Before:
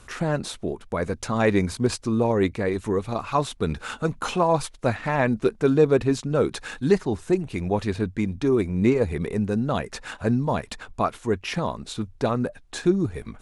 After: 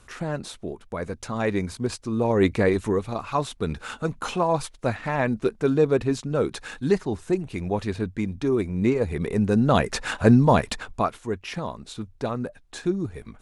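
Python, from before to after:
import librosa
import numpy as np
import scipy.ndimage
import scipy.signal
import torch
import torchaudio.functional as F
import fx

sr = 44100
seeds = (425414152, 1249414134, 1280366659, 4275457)

y = fx.gain(x, sr, db=fx.line((2.07, -4.5), (2.6, 5.5), (3.12, -2.0), (9.01, -2.0), (9.82, 7.0), (10.65, 7.0), (11.27, -4.5)))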